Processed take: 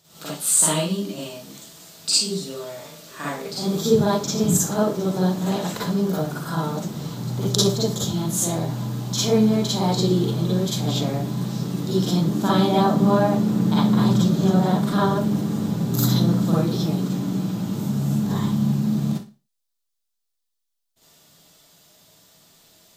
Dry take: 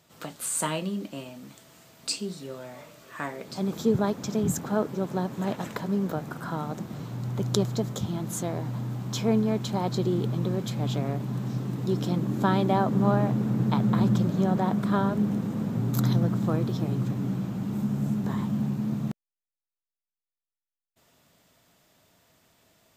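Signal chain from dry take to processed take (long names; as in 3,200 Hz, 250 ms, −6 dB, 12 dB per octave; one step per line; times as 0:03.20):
high shelf with overshoot 3,000 Hz +6 dB, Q 1.5
four-comb reverb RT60 0.32 s, DRR −7 dB
level −2 dB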